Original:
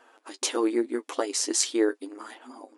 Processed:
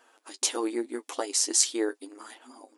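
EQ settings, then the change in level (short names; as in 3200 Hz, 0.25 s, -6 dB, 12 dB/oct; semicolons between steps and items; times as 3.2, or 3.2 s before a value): dynamic EQ 800 Hz, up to +5 dB, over -46 dBFS, Q 2.8; high shelf 3700 Hz +10.5 dB; -5.5 dB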